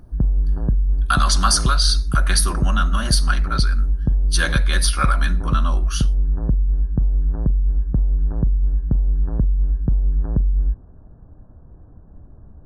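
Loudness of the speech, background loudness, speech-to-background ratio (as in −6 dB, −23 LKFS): −22.0 LKFS, −21.5 LKFS, −0.5 dB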